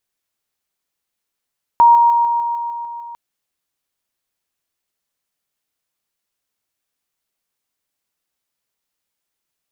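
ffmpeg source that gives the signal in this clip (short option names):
-f lavfi -i "aevalsrc='pow(10,(-5.5-3*floor(t/0.15))/20)*sin(2*PI*941*t)':d=1.35:s=44100"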